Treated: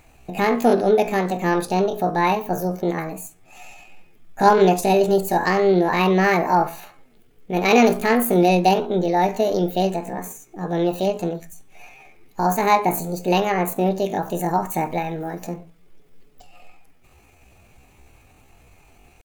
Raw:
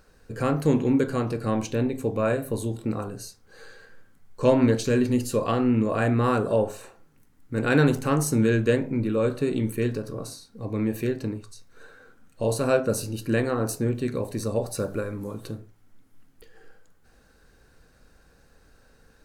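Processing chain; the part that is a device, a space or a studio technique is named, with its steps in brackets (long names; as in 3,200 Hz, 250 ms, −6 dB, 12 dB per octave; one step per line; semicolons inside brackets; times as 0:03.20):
chipmunk voice (pitch shifter +8 semitones)
level +5 dB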